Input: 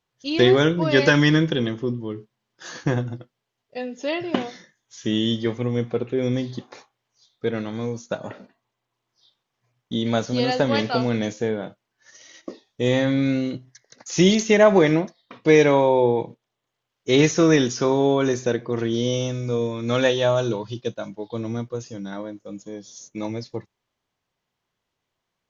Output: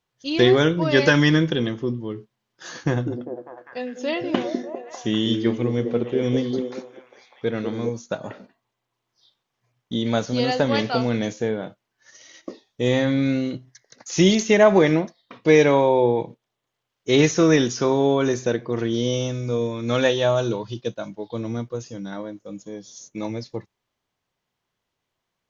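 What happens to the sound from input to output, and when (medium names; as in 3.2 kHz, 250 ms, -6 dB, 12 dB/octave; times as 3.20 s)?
2.78–7.90 s: repeats whose band climbs or falls 199 ms, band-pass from 310 Hz, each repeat 0.7 oct, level -2 dB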